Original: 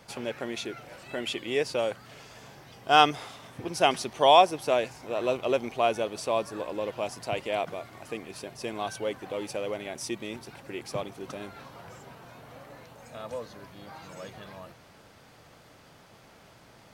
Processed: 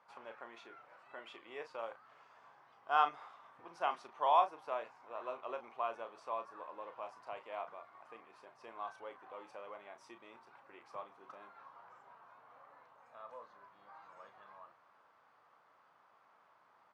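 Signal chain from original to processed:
resonant band-pass 1,100 Hz, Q 2.8
double-tracking delay 35 ms −9 dB
level −5 dB

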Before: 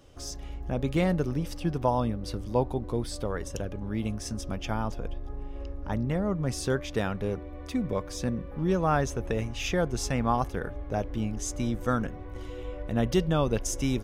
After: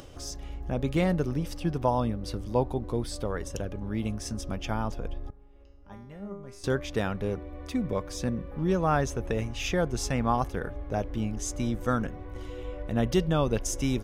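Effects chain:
upward compression, threshold −39 dBFS
0:05.30–0:06.64: tuned comb filter 200 Hz, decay 0.65 s, harmonics all, mix 90%

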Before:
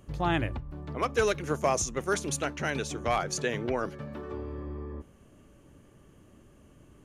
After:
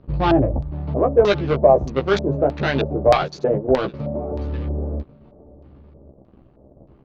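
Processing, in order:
adaptive Wiener filter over 25 samples
0:03.17–0:03.94: noise gate −31 dBFS, range −12 dB
leveller curve on the samples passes 2
high-frequency loss of the air 140 metres
double-tracking delay 15 ms −4 dB
on a send: single-tap delay 1,091 ms −22.5 dB
on the sum: auto-filter low-pass square 1.6 Hz 620–4,400 Hz
level +3.5 dB

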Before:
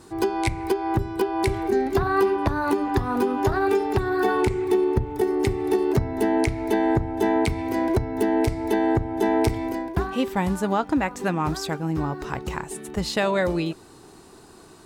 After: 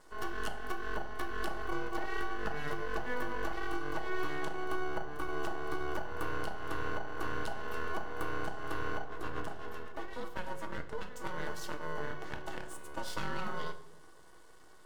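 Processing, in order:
downward compressor, threshold −21 dBFS, peak gain reduction 6.5 dB
ring modulation 740 Hz
0:09.04–0:11.13: rotating-speaker cabinet horn 8 Hz
half-wave rectification
notch filter 2,400 Hz, Q 10
convolution reverb RT60 0.75 s, pre-delay 4 ms, DRR 6 dB
level −7 dB

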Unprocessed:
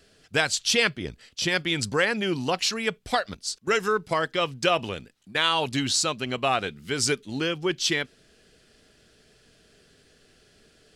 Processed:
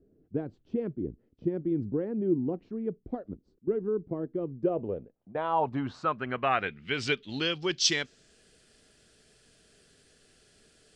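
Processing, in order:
low-pass filter sweep 330 Hz → 9,200 Hz, 0:04.45–0:08.44
level −4.5 dB

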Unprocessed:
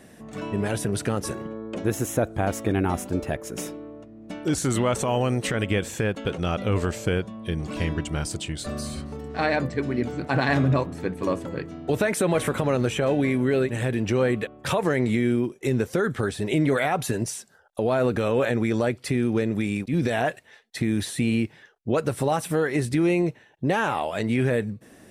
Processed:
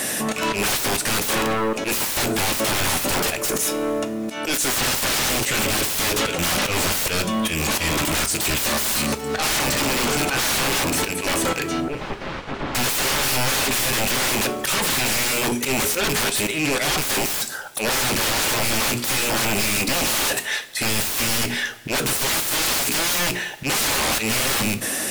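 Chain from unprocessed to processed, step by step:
loose part that buzzes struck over −31 dBFS, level −18 dBFS
spectral tilt +3.5 dB per octave
mains-hum notches 60/120/180/240/300/360/420 Hz
0:16.23–0:16.79: compressor whose output falls as the input rises −30 dBFS, ratio −0.5
volume swells 316 ms
brickwall limiter −18.5 dBFS, peak gain reduction 10.5 dB
sine wavefolder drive 20 dB, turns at −18.5 dBFS
0:11.80–0:12.75: head-to-tape spacing loss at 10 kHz 42 dB
convolution reverb, pre-delay 3 ms, DRR 8 dB

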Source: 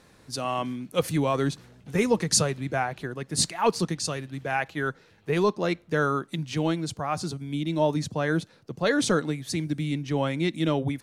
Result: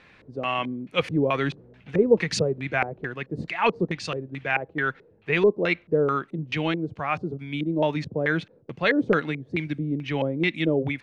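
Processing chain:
high-shelf EQ 2,100 Hz +9 dB
auto-filter low-pass square 2.3 Hz 460–2,400 Hz
level −1.5 dB

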